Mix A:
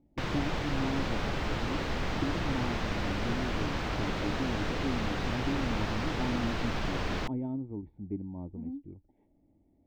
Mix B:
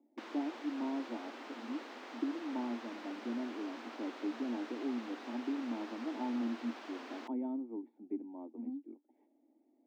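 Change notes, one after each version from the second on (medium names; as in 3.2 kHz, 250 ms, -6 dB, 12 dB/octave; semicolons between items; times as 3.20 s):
background -11.5 dB; master: add rippled Chebyshev high-pass 230 Hz, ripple 3 dB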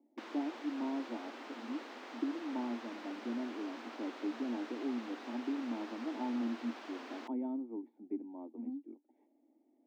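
no change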